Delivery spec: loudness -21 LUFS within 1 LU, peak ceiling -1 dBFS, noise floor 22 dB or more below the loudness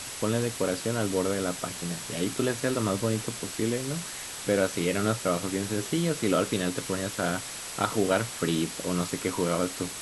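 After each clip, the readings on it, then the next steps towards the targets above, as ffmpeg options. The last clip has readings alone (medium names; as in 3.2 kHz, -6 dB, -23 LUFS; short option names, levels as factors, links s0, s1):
steady tone 7.8 kHz; tone level -46 dBFS; noise floor -38 dBFS; noise floor target -51 dBFS; loudness -28.5 LUFS; peak level -10.5 dBFS; loudness target -21.0 LUFS
-> -af "bandreject=f=7800:w=30"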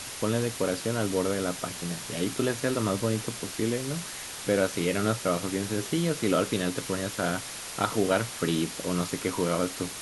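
steady tone not found; noise floor -39 dBFS; noise floor target -51 dBFS
-> -af "afftdn=nr=12:nf=-39"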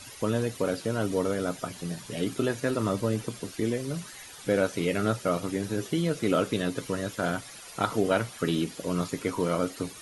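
noise floor -46 dBFS; noise floor target -52 dBFS
-> -af "afftdn=nr=6:nf=-46"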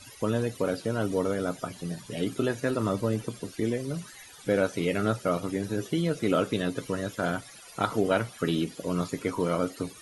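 noise floor -49 dBFS; noise floor target -52 dBFS
-> -af "afftdn=nr=6:nf=-49"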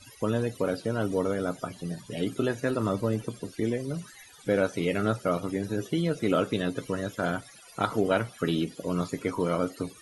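noise floor -52 dBFS; loudness -29.5 LUFS; peak level -11.0 dBFS; loudness target -21.0 LUFS
-> -af "volume=2.66"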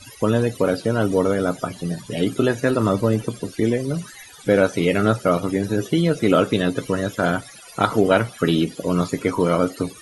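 loudness -21.0 LUFS; peak level -2.5 dBFS; noise floor -43 dBFS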